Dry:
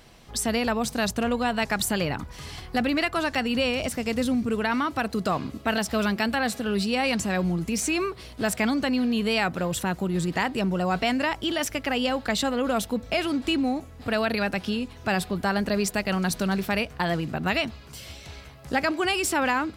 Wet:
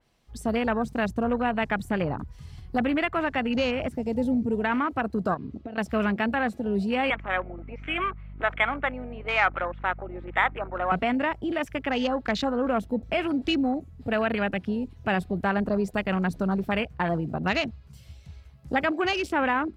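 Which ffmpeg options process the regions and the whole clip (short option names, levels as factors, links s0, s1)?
-filter_complex "[0:a]asettb=1/sr,asplit=3[s0][s1][s2];[s0]atrim=end=5.344[s3];[s1]atrim=start=5.34:end=5.78,asetpts=PTS-STARTPTS,afade=t=in:d=0.004:c=qsin,afade=t=out:st=0.436:d=0.004:c=qsin,lowpass=4600,acompressor=threshold=0.0316:ratio=8:attack=3.2:release=140:knee=1:detection=peak[s4];[s2]atrim=start=5.776[s5];[s3][s4]acrossfade=d=0.004:c1=hsin:c2=qsin[s6];[s6][s5]acrossfade=d=0.004:c1=qsin:c2=hsin,asettb=1/sr,asplit=3[s7][s8][s9];[s7]atrim=end=7.104[s10];[s8]atrim=start=7.1:end=10.92,asetpts=PTS-STARTPTS,afade=t=in:d=0.004:c=qsin,afade=t=out:st=3.816:d=0.004:c=qsin,highpass=f=390:w=0.5412,highpass=f=390:w=1.3066,equalizer=f=420:t=q:w=4:g=-8,equalizer=f=830:t=q:w=4:g=3,equalizer=f=1300:t=q:w=4:g=9,equalizer=f=2200:t=q:w=4:g=9,lowpass=f=2500:w=0.5412,lowpass=f=2500:w=1.3066,aeval=exprs='val(0)+0.0112*(sin(2*PI*50*n/s)+sin(2*PI*2*50*n/s)/2+sin(2*PI*3*50*n/s)/3+sin(2*PI*4*50*n/s)/4+sin(2*PI*5*50*n/s)/5)':c=same[s11];[s9]atrim=start=10.916[s12];[s10][s11]acrossfade=d=0.004:c1=hsin:c2=qsin[s13];[s13][s12]acrossfade=d=0.004:c1=qsin:c2=hsin,afwtdn=0.0282,adynamicequalizer=threshold=0.00794:dfrequency=2900:dqfactor=0.7:tfrequency=2900:tqfactor=0.7:attack=5:release=100:ratio=0.375:range=3.5:mode=cutabove:tftype=highshelf"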